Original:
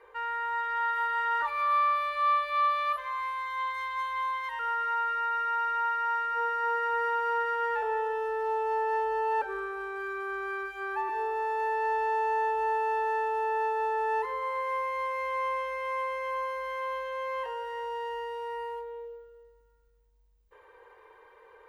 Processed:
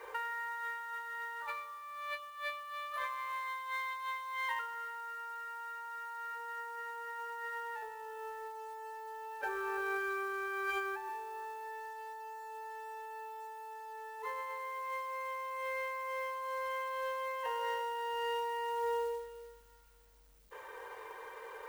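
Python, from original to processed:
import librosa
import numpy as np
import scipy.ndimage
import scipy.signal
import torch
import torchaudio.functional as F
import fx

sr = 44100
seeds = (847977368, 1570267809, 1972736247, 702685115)

p1 = fx.low_shelf(x, sr, hz=200.0, db=-7.5)
p2 = fx.comb_fb(p1, sr, f0_hz=110.0, decay_s=0.49, harmonics='all', damping=0.0, mix_pct=30)
p3 = p2 + fx.echo_single(p2, sr, ms=360, db=-15.0, dry=0)
p4 = fx.over_compress(p3, sr, threshold_db=-43.0, ratio=-1.0)
p5 = fx.high_shelf(p4, sr, hz=3100.0, db=3.0)
p6 = fx.hum_notches(p5, sr, base_hz=60, count=9)
p7 = fx.rev_fdn(p6, sr, rt60_s=1.4, lf_ratio=1.0, hf_ratio=0.55, size_ms=32.0, drr_db=11.5)
p8 = fx.quant_companded(p7, sr, bits=6)
y = F.gain(torch.from_numpy(p8), 1.5).numpy()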